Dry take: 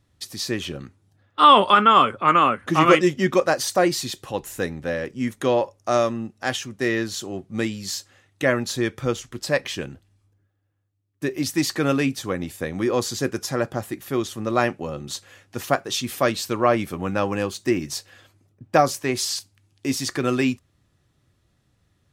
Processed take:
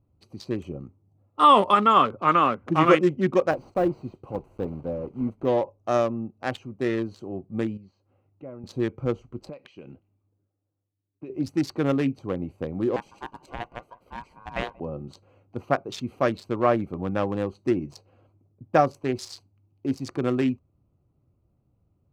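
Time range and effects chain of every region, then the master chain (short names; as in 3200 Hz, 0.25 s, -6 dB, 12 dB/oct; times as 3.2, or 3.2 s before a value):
0.61–1.94 Butterworth band-stop 1500 Hz, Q 7.5 + resonant high shelf 5300 Hz +7.5 dB, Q 1.5
3.51–5.48 block floating point 3-bit + de-esser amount 75%
7.77–8.64 compressor 1.5:1, threshold -59 dBFS + air absorption 150 m
9.49–11.3 weighting filter D + low-pass opened by the level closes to 1400 Hz, open at -16.5 dBFS + compressor 5:1, threshold -32 dBFS
12.96–14.8 low shelf 320 Hz -11 dB + ring modulator 1300 Hz + echo 0.182 s -22 dB
whole clip: Wiener smoothing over 25 samples; high shelf 3400 Hz -9 dB; gain -1.5 dB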